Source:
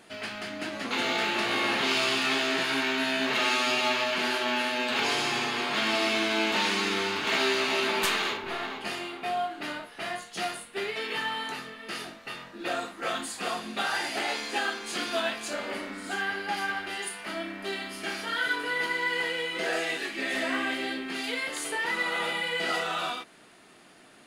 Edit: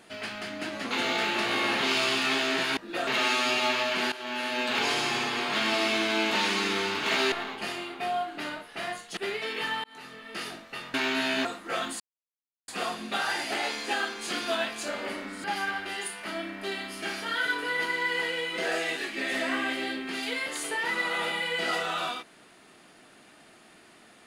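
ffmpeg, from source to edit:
-filter_complex "[0:a]asplit=11[a][b][c][d][e][f][g][h][i][j][k];[a]atrim=end=2.772[l];[b]atrim=start=12.478:end=12.782[m];[c]atrim=start=3.278:end=4.33,asetpts=PTS-STARTPTS,afade=t=out:st=1.048:d=0.004:c=hsin:silence=0.177828[n];[d]atrim=start=4.33:end=7.532,asetpts=PTS-STARTPTS,afade=t=in:d=0.48:silence=0.177828[o];[e]atrim=start=8.548:end=10.402[p];[f]atrim=start=10.708:end=11.38,asetpts=PTS-STARTPTS,afade=t=out:st=0.668:d=0.004:c=hsin[q];[g]atrim=start=11.38:end=12.482,asetpts=PTS-STARTPTS,afade=t=in:d=0.45[r];[h]atrim=start=2.768:end=3.282[s];[i]atrim=start=12.778:end=13.33,asetpts=PTS-STARTPTS,afade=t=out:st=0.548:d=0.004:c=hsin,apad=pad_dur=0.68[t];[j]atrim=start=13.33:end=16.092,asetpts=PTS-STARTPTS,afade=t=in:d=0.004:c=hsin[u];[k]atrim=start=16.448[v];[l][m]acrossfade=d=0.004:c1=hsin:c2=hsin[w];[n][o]concat=n=2:v=0:a=1[x];[w][x]acrossfade=d=0.004:c1=hsin:c2=hsin[y];[y][p]acrossfade=d=0.004:c1=hsin:c2=hsin[z];[q][r]concat=n=2:v=0:a=1[aa];[z][aa]acrossfade=d=0.004:c1=hsin:c2=hsin[ab];[ab][s]acrossfade=d=0.004:c1=hsin:c2=hsin[ac];[t][u]concat=n=2:v=0:a=1[ad];[ac][ad]acrossfade=d=0.004:c1=hsin:c2=hsin[ae];[ae][v]acrossfade=d=0.004:c1=hsin:c2=hsin"

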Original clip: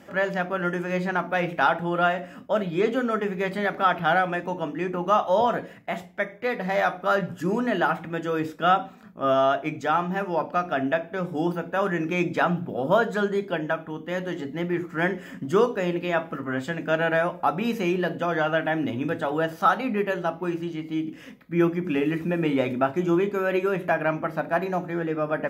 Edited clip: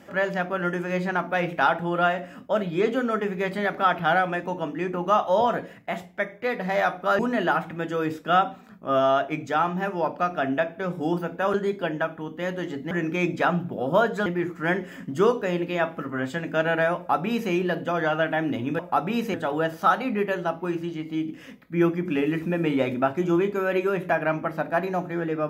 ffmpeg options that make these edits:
-filter_complex "[0:a]asplit=7[a][b][c][d][e][f][g];[a]atrim=end=7.192[h];[b]atrim=start=7.528:end=11.882[i];[c]atrim=start=13.228:end=14.602[j];[d]atrim=start=11.878:end=13.232[k];[e]atrim=start=14.598:end=19.132[l];[f]atrim=start=17.298:end=17.852[m];[g]atrim=start=19.128[n];[h][i]acrossfade=d=0.004:c1=hsin:c2=hsin[o];[o][j]acrossfade=d=0.004:c1=hsin:c2=hsin[p];[p][k]acrossfade=d=0.004:c1=hsin:c2=hsin[q];[q][l]acrossfade=d=0.004:c1=hsin:c2=hsin[r];[r][m]acrossfade=d=0.004:c1=hsin:c2=hsin[s];[s][n]acrossfade=d=0.004:c1=hsin:c2=hsin"

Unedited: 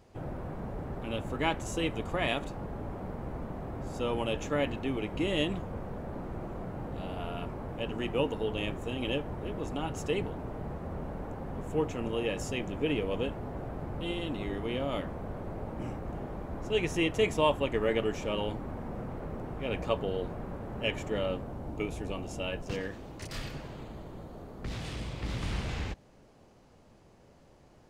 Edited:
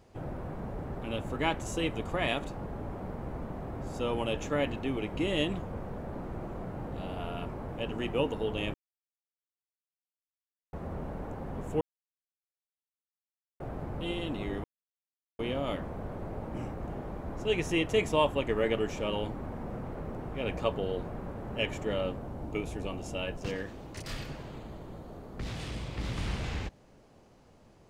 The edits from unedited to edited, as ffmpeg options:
-filter_complex "[0:a]asplit=6[a][b][c][d][e][f];[a]atrim=end=8.74,asetpts=PTS-STARTPTS,afade=t=out:st=8.736:d=0.004:c=hsin[g];[b]atrim=start=8.74:end=10.73,asetpts=PTS-STARTPTS,volume=0[h];[c]atrim=start=10.73:end=11.81,asetpts=PTS-STARTPTS,afade=t=in:d=0.004:c=hsin,afade=t=out:st=1.076:d=0.004:c=hsin[i];[d]atrim=start=11.81:end=13.6,asetpts=PTS-STARTPTS,volume=0[j];[e]atrim=start=13.6:end=14.64,asetpts=PTS-STARTPTS,afade=t=in:d=0.004:c=hsin,afade=t=out:st=1.036:d=0.004:c=hsin,apad=pad_dur=0.75[k];[f]atrim=start=14.64,asetpts=PTS-STARTPTS,afade=t=in:d=0.004:c=hsin[l];[g][h][i][j][k][l]concat=n=6:v=0:a=1"

